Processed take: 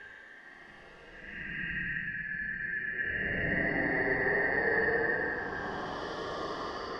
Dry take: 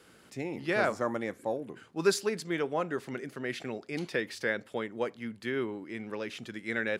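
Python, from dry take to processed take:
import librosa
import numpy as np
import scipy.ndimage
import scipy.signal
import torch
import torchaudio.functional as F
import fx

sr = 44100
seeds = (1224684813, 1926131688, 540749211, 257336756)

y = fx.band_shuffle(x, sr, order='2143')
y = fx.paulstretch(y, sr, seeds[0], factor=24.0, window_s=0.05, from_s=3.3)
y = scipy.signal.sosfilt(scipy.signal.butter(2, 2200.0, 'lowpass', fs=sr, output='sos'), y)
y = fx.echo_opening(y, sr, ms=708, hz=200, octaves=1, feedback_pct=70, wet_db=-6)
y = y * librosa.db_to_amplitude(4.5)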